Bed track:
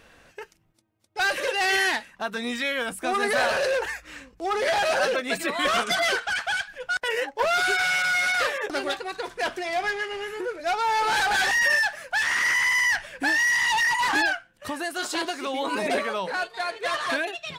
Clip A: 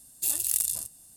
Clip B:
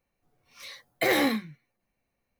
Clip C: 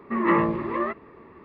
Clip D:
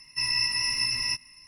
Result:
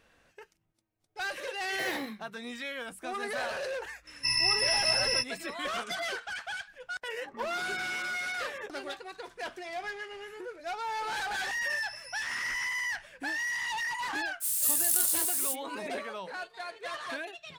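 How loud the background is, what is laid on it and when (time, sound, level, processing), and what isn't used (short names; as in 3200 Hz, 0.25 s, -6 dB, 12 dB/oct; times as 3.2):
bed track -11 dB
0.77 add B -13 dB
4.07 add D -0.5 dB
7.24 add C -10 dB + compressor, threshold -36 dBFS
11.52 add D -7 dB + spectral noise reduction 13 dB
14.4 add A -4.5 dB, fades 0.05 s + switching spikes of -22 dBFS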